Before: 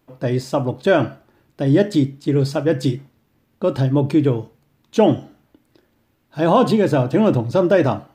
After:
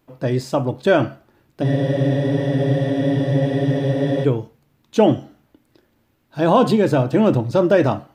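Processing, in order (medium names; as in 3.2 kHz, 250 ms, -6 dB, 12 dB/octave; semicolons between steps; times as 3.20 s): spectral freeze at 1.66 s, 2.58 s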